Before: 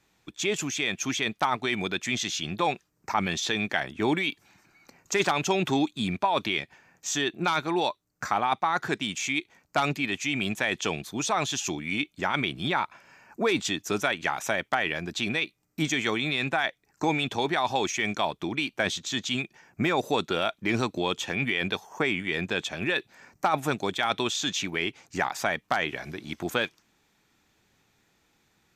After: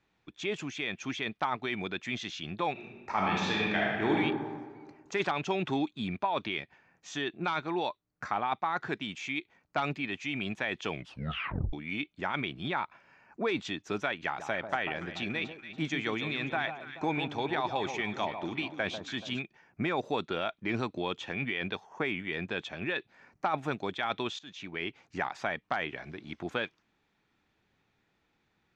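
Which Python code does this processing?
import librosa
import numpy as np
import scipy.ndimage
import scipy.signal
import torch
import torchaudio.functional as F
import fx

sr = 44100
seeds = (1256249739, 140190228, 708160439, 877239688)

y = fx.reverb_throw(x, sr, start_s=2.72, length_s=1.43, rt60_s=1.6, drr_db=-3.5)
y = fx.echo_alternate(y, sr, ms=143, hz=1200.0, feedback_pct=63, wet_db=-7.5, at=(14.24, 19.39))
y = fx.edit(y, sr, fx.tape_stop(start_s=10.91, length_s=0.82),
    fx.fade_in_from(start_s=24.39, length_s=0.48, floor_db=-20.5), tone=tone)
y = scipy.signal.sosfilt(scipy.signal.butter(2, 3500.0, 'lowpass', fs=sr, output='sos'), y)
y = F.gain(torch.from_numpy(y), -5.5).numpy()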